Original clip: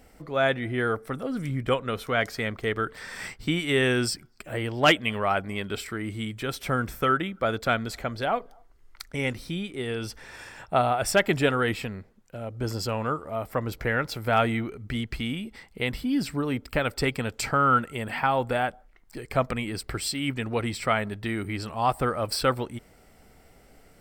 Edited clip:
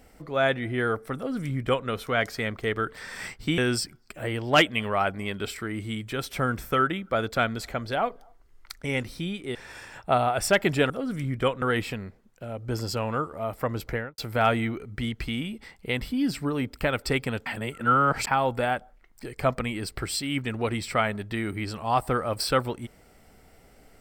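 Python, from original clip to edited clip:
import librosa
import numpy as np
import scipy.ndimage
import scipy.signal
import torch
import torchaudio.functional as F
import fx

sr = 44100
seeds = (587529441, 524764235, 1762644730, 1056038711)

y = fx.studio_fade_out(x, sr, start_s=13.79, length_s=0.31)
y = fx.edit(y, sr, fx.duplicate(start_s=1.16, length_s=0.72, to_s=11.54),
    fx.cut(start_s=3.58, length_s=0.3),
    fx.cut(start_s=9.85, length_s=0.34),
    fx.reverse_span(start_s=17.38, length_s=0.81), tone=tone)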